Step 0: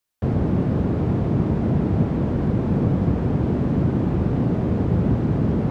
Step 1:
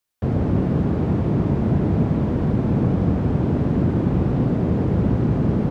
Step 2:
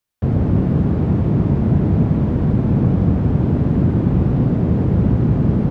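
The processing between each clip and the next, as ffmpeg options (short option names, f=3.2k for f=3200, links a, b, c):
-af "aecho=1:1:102|180.8:0.355|0.316"
-af "bass=f=250:g=5,treble=f=4k:g=-2"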